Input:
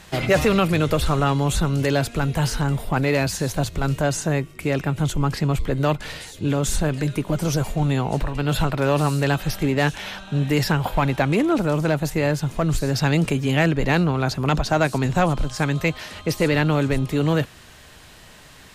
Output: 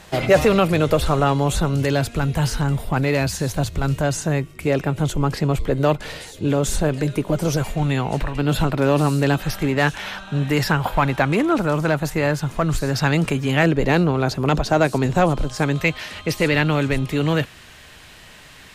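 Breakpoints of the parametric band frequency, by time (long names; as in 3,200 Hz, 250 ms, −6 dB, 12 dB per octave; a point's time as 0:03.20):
parametric band +5 dB 1.4 octaves
600 Hz
from 0:01.75 73 Hz
from 0:04.67 490 Hz
from 0:07.57 2,100 Hz
from 0:08.38 290 Hz
from 0:09.42 1,300 Hz
from 0:13.63 420 Hz
from 0:15.76 2,400 Hz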